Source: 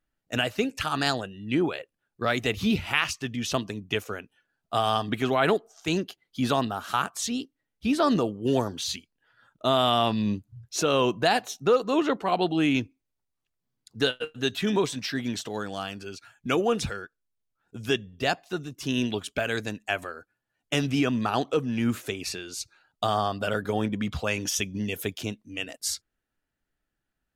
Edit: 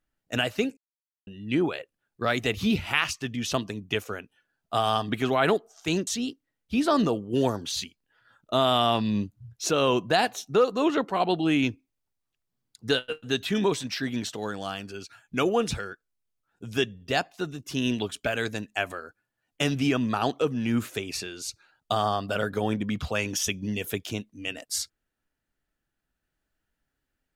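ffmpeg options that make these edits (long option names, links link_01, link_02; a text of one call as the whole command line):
ffmpeg -i in.wav -filter_complex "[0:a]asplit=4[link_01][link_02][link_03][link_04];[link_01]atrim=end=0.77,asetpts=PTS-STARTPTS,afade=type=out:start_time=0.766:duration=0.004:curve=hsin[link_05];[link_02]atrim=start=0.77:end=1.27,asetpts=PTS-STARTPTS,volume=0[link_06];[link_03]atrim=start=1.27:end=6.072,asetpts=PTS-STARTPTS,afade=type=in:duration=0.004:curve=hsin[link_07];[link_04]atrim=start=7.188[link_08];[link_05][link_06][link_07]concat=n=3:v=0:a=1[link_09];[link_09][link_08]acrossfade=duration=0.004:curve1=hsin:curve2=hsin" out.wav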